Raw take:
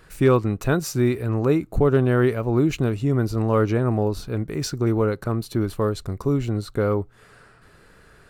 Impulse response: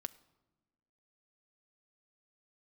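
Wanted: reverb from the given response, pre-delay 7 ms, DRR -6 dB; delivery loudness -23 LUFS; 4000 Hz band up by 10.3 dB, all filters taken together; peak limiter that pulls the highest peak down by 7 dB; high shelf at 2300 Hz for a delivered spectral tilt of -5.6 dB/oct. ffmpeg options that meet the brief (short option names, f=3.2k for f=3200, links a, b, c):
-filter_complex "[0:a]highshelf=f=2.3k:g=4.5,equalizer=f=4k:t=o:g=8.5,alimiter=limit=-13.5dB:level=0:latency=1,asplit=2[a][b];[1:a]atrim=start_sample=2205,adelay=7[c];[b][c]afir=irnorm=-1:irlink=0,volume=9dB[d];[a][d]amix=inputs=2:normalize=0,volume=-5.5dB"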